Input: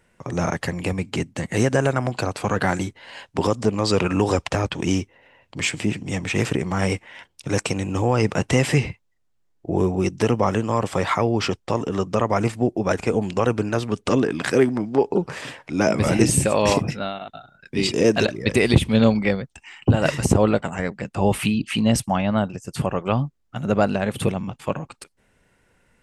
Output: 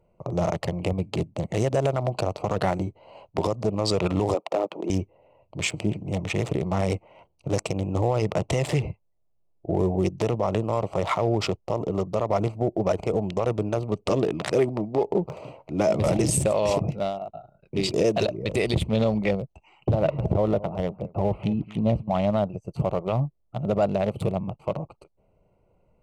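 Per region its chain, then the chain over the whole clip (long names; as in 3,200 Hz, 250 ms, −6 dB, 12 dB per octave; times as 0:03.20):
0:04.34–0:04.90: high-pass filter 260 Hz 24 dB per octave + high-shelf EQ 2,500 Hz −11.5 dB
0:19.94–0:22.14: one scale factor per block 5 bits + high-frequency loss of the air 420 metres + single-tap delay 217 ms −20.5 dB
whole clip: adaptive Wiener filter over 25 samples; thirty-one-band graphic EQ 250 Hz −10 dB, 630 Hz +7 dB, 1,600 Hz −11 dB; brickwall limiter −13 dBFS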